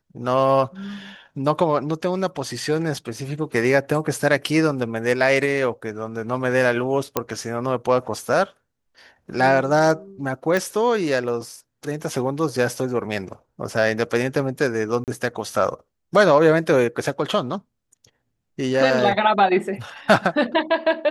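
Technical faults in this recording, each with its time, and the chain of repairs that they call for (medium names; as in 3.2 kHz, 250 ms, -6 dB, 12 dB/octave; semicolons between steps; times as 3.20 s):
7.17 s: pop -5 dBFS
10.57 s: pop
15.04–15.08 s: dropout 38 ms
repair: de-click; interpolate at 15.04 s, 38 ms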